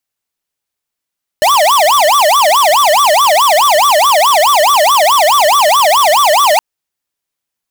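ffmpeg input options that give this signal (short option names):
-f lavfi -i "aevalsrc='0.376*(2*lt(mod((880*t-290/(2*PI*4.7)*sin(2*PI*4.7*t)),1),0.5)-1)':d=5.17:s=44100"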